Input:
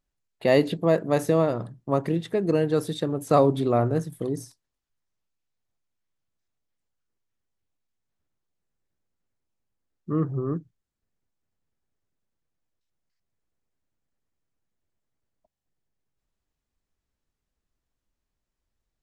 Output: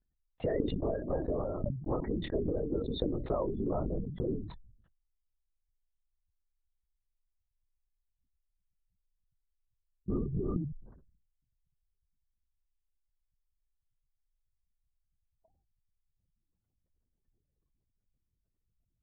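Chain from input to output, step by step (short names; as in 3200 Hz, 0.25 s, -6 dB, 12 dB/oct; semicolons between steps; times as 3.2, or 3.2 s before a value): LPF 2800 Hz 6 dB/oct; spectral gate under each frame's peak -20 dB strong; compressor 12:1, threshold -29 dBFS, peak gain reduction 15.5 dB; LPC vocoder at 8 kHz whisper; sustainer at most 68 dB/s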